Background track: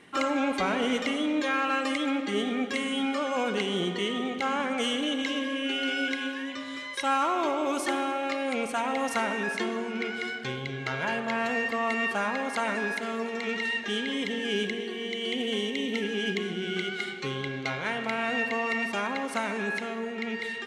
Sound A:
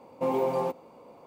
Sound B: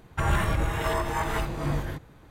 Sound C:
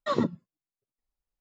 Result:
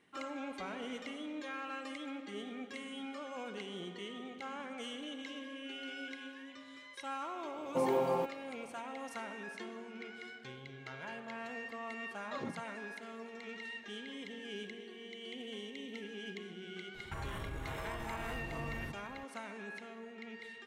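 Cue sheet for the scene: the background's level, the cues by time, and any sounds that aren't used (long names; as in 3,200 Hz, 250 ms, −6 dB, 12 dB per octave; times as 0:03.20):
background track −15.5 dB
0:07.54: mix in A −4.5 dB
0:12.25: mix in C −7.5 dB + downward compressor 2.5 to 1, threshold −34 dBFS
0:16.94: mix in B −6 dB + downward compressor, threshold −33 dBFS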